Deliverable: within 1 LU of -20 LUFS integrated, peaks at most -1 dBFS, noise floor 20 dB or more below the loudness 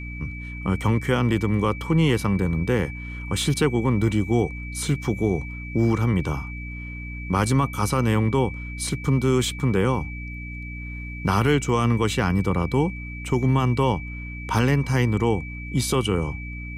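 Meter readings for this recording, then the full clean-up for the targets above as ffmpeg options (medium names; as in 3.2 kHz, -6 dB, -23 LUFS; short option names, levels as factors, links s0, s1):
hum 60 Hz; highest harmonic 300 Hz; hum level -33 dBFS; steady tone 2.3 kHz; tone level -37 dBFS; loudness -23.5 LUFS; peak level -9.0 dBFS; loudness target -20.0 LUFS
-> -af "bandreject=f=60:t=h:w=6,bandreject=f=120:t=h:w=6,bandreject=f=180:t=h:w=6,bandreject=f=240:t=h:w=6,bandreject=f=300:t=h:w=6"
-af "bandreject=f=2300:w=30"
-af "volume=1.5"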